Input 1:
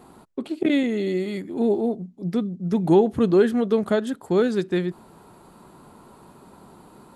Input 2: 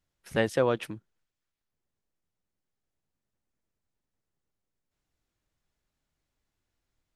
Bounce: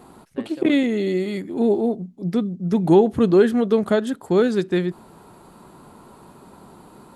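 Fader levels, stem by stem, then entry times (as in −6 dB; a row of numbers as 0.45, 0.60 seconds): +2.5, −15.5 decibels; 0.00, 0.00 seconds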